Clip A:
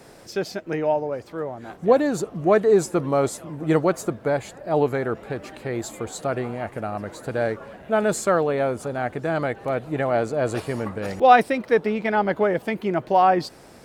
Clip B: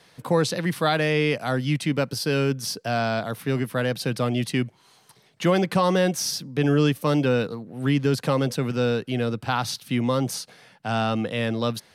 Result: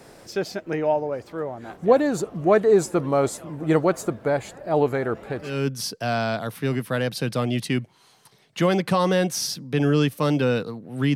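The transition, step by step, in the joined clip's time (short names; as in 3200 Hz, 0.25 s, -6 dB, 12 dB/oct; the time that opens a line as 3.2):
clip A
5.53 switch to clip B from 2.37 s, crossfade 0.28 s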